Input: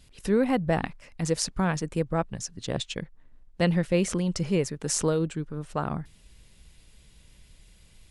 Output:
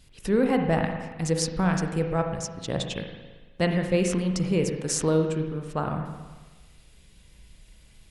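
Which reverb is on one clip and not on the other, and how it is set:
spring reverb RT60 1.3 s, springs 38/54 ms, chirp 55 ms, DRR 4 dB

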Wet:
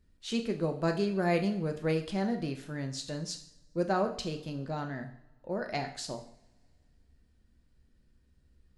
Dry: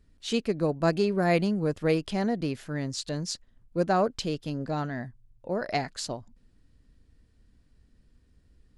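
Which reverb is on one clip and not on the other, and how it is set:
coupled-rooms reverb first 0.57 s, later 2.4 s, from −26 dB, DRR 4.5 dB
level −5.5 dB

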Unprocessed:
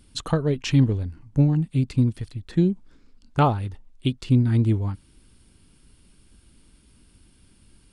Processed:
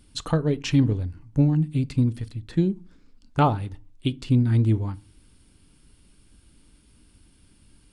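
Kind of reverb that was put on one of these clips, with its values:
feedback delay network reverb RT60 0.34 s, low-frequency decay 1.5×, high-frequency decay 0.7×, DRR 15.5 dB
level −1 dB

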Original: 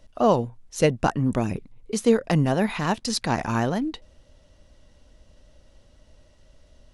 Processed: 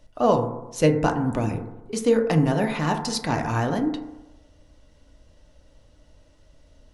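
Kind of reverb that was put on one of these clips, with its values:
feedback delay network reverb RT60 1 s, low-frequency decay 0.9×, high-frequency decay 0.25×, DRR 4 dB
level −1.5 dB

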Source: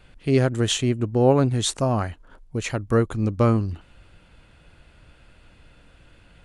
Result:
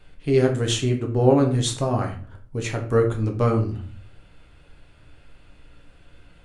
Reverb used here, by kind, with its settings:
rectangular room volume 44 cubic metres, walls mixed, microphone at 0.5 metres
level −3 dB

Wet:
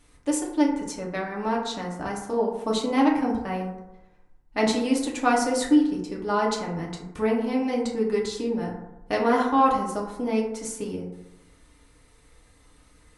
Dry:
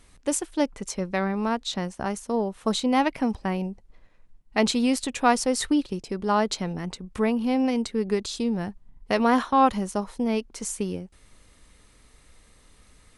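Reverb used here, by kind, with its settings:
feedback delay network reverb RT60 0.94 s, low-frequency decay 0.9×, high-frequency decay 0.35×, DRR −3 dB
level −5 dB

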